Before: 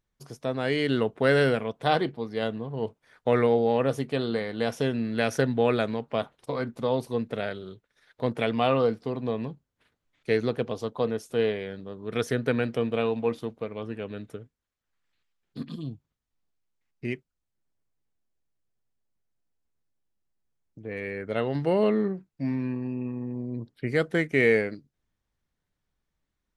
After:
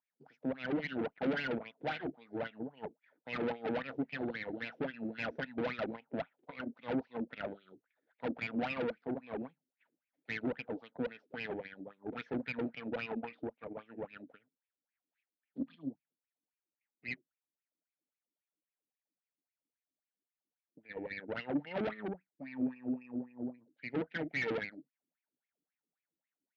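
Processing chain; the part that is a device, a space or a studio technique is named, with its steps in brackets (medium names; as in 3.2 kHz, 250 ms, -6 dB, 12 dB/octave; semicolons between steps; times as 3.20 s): wah-wah guitar rig (wah-wah 3.7 Hz 310–2500 Hz, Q 7.2; valve stage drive 39 dB, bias 0.75; cabinet simulation 91–4100 Hz, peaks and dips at 100 Hz -5 dB, 170 Hz +7 dB, 260 Hz +9 dB, 390 Hz -6 dB, 1.1 kHz -9 dB); trim +8 dB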